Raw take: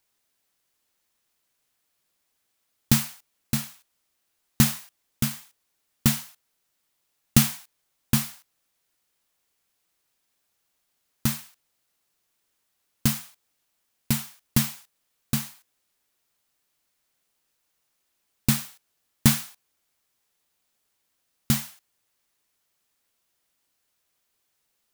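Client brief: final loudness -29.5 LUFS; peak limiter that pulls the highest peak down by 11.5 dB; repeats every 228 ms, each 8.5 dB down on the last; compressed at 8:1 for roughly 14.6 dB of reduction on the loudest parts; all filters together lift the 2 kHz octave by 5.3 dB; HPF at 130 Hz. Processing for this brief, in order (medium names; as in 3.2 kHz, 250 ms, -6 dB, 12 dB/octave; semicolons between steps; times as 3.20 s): high-pass 130 Hz; peaking EQ 2 kHz +6.5 dB; compression 8:1, threshold -29 dBFS; peak limiter -19.5 dBFS; feedback delay 228 ms, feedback 38%, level -8.5 dB; trim +12 dB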